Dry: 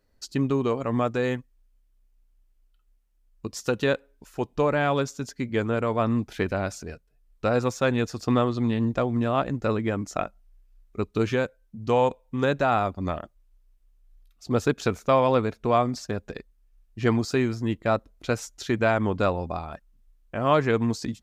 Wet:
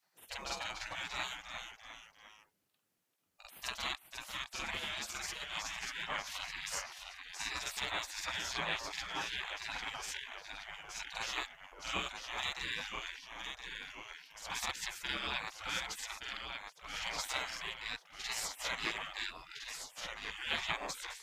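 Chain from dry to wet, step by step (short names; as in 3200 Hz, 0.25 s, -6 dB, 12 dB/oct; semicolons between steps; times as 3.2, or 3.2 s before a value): reverse echo 46 ms -3.5 dB; echoes that change speed 0.276 s, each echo -1 st, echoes 3, each echo -6 dB; spectral gate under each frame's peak -25 dB weak; gain +1 dB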